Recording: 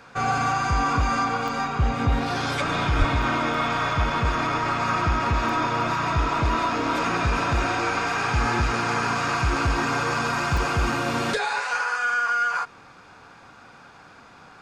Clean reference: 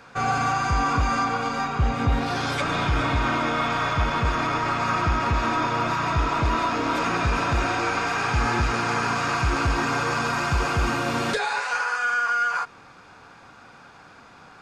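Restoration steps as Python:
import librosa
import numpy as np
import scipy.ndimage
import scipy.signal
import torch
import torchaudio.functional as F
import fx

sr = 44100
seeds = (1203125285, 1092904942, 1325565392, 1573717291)

y = fx.highpass(x, sr, hz=140.0, slope=24, at=(2.98, 3.1), fade=0.02)
y = fx.fix_interpolate(y, sr, at_s=(1.48, 3.22, 3.54, 5.49, 10.57, 10.92), length_ms=2.6)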